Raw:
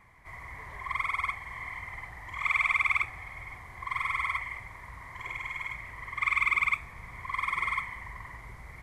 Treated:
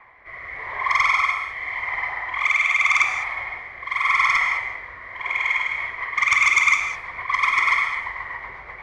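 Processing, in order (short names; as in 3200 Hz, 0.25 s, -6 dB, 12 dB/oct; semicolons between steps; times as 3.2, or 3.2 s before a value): three-band isolator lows -19 dB, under 430 Hz, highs -13 dB, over 5500 Hz; low-pass opened by the level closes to 2100 Hz, open at -27 dBFS; bell 6100 Hz +3.5 dB 1.8 oct; in parallel at -2 dB: limiter -21.5 dBFS, peak gain reduction 8 dB; on the sum: rotary speaker horn 0.85 Hz, later 8 Hz, at 5.36; sine folder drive 6 dB, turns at -11 dBFS; non-linear reverb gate 0.23 s flat, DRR 4 dB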